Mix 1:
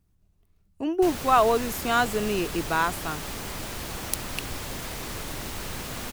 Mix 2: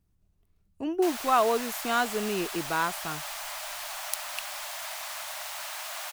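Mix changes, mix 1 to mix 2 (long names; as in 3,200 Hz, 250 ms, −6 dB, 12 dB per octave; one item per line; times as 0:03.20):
speech −3.5 dB
background: add linear-phase brick-wall high-pass 570 Hz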